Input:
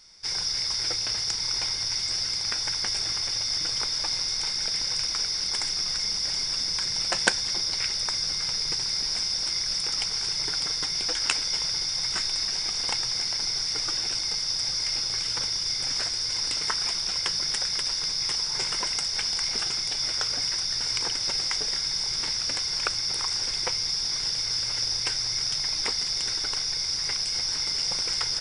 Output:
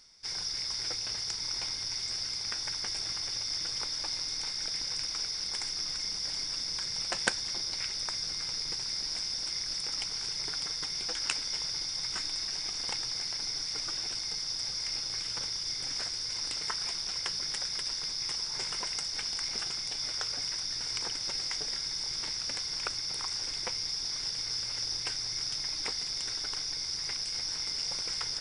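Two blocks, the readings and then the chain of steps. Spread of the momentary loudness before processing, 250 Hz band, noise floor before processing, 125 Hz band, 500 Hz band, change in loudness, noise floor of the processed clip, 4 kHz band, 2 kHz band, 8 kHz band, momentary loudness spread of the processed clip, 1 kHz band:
1 LU, −6.0 dB, −30 dBFS, −7.0 dB, −6.5 dB, −7.0 dB, −37 dBFS, −7.0 dB, −7.0 dB, −6.5 dB, 1 LU, −7.0 dB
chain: amplitude modulation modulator 300 Hz, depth 35%
reversed playback
upward compression, threshold −38 dBFS
reversed playback
level −4.5 dB

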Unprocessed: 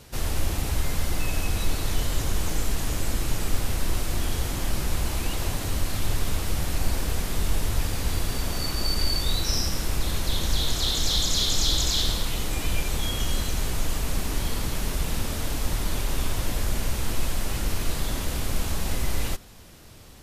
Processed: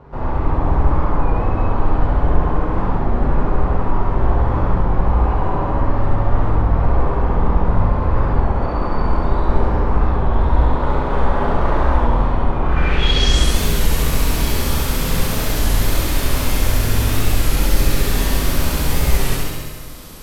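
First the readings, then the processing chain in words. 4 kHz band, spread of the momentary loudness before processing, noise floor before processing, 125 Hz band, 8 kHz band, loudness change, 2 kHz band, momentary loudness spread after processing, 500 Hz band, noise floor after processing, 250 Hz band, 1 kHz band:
+1.5 dB, 6 LU, −33 dBFS, +10.5 dB, +1.0 dB, +8.5 dB, +7.5 dB, 3 LU, +13.0 dB, −22 dBFS, +11.0 dB, +15.0 dB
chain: stylus tracing distortion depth 0.31 ms
low-pass filter sweep 990 Hz → 13,000 Hz, 0:12.60–0:13.55
in parallel at −12 dB: hard clipping −19.5 dBFS, distortion −14 dB
on the sum: flutter between parallel walls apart 11.6 metres, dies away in 1.3 s
dense smooth reverb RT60 1.5 s, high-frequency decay 0.75×, DRR −1 dB
wow of a warped record 33 1/3 rpm, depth 100 cents
level +2 dB

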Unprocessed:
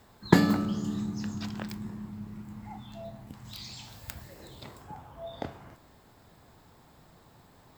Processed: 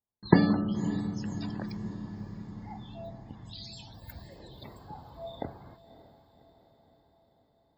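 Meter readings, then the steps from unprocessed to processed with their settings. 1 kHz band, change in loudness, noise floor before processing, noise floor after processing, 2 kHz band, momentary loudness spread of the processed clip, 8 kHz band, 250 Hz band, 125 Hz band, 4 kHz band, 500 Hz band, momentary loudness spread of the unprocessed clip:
−1.5 dB, 0.0 dB, −59 dBFS, −70 dBFS, −3.5 dB, 23 LU, −9.5 dB, 0.0 dB, +0.5 dB, −3.5 dB, 0.0 dB, 23 LU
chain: spectral peaks only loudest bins 64
noise gate −52 dBFS, range −39 dB
parametric band 1,400 Hz −6 dB 0.49 octaves
feedback delay with all-pass diffusion 571 ms, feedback 58%, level −15.5 dB

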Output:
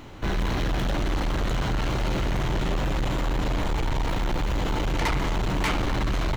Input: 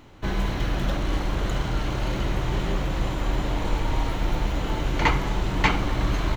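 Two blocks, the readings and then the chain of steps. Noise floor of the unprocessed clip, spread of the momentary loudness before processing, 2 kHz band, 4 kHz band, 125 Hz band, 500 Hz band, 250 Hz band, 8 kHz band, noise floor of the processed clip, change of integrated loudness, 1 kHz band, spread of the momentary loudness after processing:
−30 dBFS, 5 LU, −1.5 dB, 0.0 dB, −0.5 dB, 0.0 dB, 0.0 dB, can't be measured, −27 dBFS, −0.5 dB, −1.0 dB, 2 LU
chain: in parallel at +1 dB: brickwall limiter −17 dBFS, peak gain reduction 9.5 dB
on the sum: soft clipping −21.5 dBFS, distortion −9 dB

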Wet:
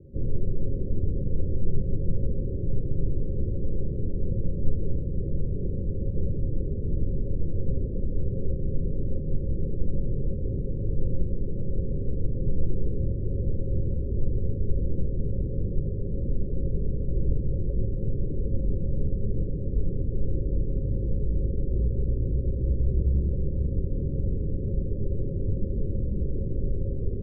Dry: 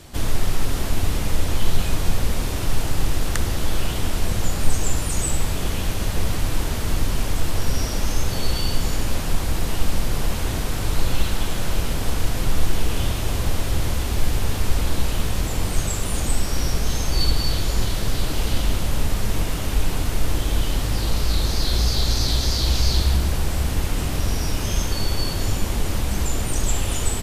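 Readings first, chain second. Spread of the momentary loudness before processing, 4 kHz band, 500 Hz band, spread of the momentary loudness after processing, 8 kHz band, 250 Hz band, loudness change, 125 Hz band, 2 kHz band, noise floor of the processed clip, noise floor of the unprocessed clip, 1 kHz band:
5 LU, below −40 dB, −4.0 dB, 3 LU, below −40 dB, −3.5 dB, −5.5 dB, −3.0 dB, below −40 dB, −30 dBFS, −25 dBFS, below −40 dB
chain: Chebyshev low-pass with heavy ripple 560 Hz, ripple 6 dB

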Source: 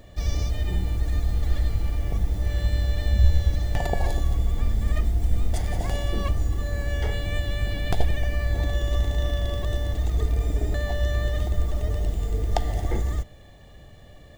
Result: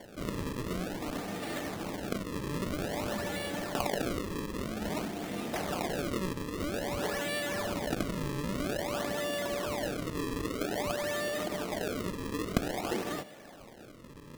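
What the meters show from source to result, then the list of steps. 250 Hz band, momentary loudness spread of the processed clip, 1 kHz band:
+2.0 dB, 5 LU, 0.0 dB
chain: high-pass filter 200 Hz 24 dB per octave
in parallel at −2.5 dB: compressor whose output falls as the input rises −38 dBFS
on the sum: sample-and-hold swept by an LFO 34×, swing 160% 0.51 Hz
level −2 dB

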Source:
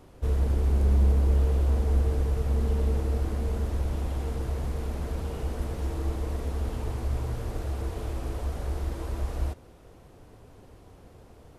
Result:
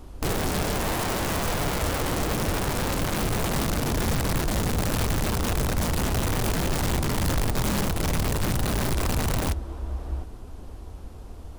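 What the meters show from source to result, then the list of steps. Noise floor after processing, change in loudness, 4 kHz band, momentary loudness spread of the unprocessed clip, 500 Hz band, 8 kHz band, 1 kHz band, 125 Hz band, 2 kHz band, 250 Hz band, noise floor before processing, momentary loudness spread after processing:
−40 dBFS, +2.5 dB, +17.5 dB, 10 LU, +6.0 dB, can't be measured, +12.0 dB, 0.0 dB, +16.0 dB, +8.5 dB, −52 dBFS, 10 LU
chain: graphic EQ with 10 bands 125 Hz −11 dB, 500 Hz −6 dB, 2,000 Hz −5 dB
on a send: tape delay 702 ms, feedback 21%, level −7 dB, low-pass 1,800 Hz
on the sum: wrap-around overflow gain 31 dB
low-shelf EQ 140 Hz +10 dB
level +7.5 dB

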